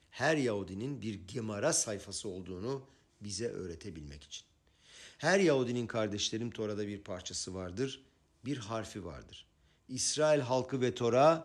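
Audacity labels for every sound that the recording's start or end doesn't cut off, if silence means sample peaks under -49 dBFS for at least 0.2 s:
3.210000	4.400000	sound
4.890000	7.980000	sound
8.440000	9.410000	sound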